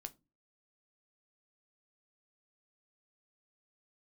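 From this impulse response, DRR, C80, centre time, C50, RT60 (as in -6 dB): 8.5 dB, 30.5 dB, 3 ms, 22.5 dB, no single decay rate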